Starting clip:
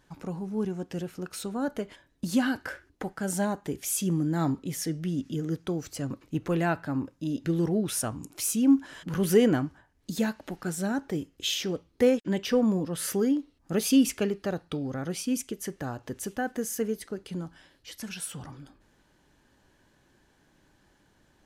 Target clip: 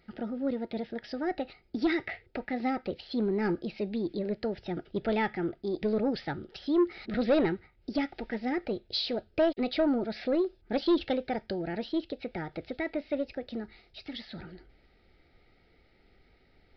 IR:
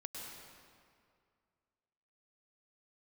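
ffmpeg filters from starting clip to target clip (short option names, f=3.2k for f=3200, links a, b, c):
-af "asuperstop=centerf=830:order=12:qfactor=3.9,asetrate=56448,aresample=44100,aresample=11025,asoftclip=type=tanh:threshold=-17.5dB,aresample=44100,asubboost=boost=2.5:cutoff=75"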